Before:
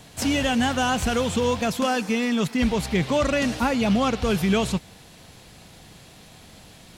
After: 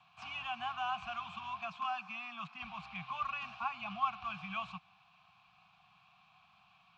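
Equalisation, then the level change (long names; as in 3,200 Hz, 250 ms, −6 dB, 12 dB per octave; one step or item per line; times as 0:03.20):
formant filter a
elliptic band-stop filter 180–960 Hz, stop band 80 dB
high-frequency loss of the air 150 metres
+3.5 dB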